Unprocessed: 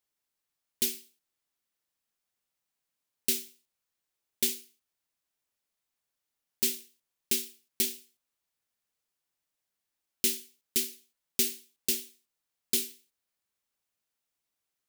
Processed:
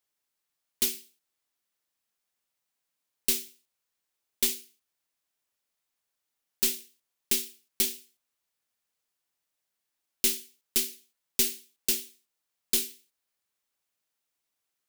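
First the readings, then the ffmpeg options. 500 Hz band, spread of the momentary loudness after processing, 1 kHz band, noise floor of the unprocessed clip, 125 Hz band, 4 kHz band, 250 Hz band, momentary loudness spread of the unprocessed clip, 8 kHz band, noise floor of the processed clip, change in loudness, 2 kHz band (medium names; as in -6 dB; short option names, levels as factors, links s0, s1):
+0.5 dB, 12 LU, no reading, under -85 dBFS, -0.5 dB, +2.0 dB, -0.5 dB, 12 LU, +2.0 dB, -84 dBFS, +2.0 dB, +2.5 dB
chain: -af "aeval=exprs='0.251*(cos(1*acos(clip(val(0)/0.251,-1,1)))-cos(1*PI/2))+0.0224*(cos(4*acos(clip(val(0)/0.251,-1,1)))-cos(4*PI/2))':c=same,lowshelf=f=260:g=-4.5,volume=1.26"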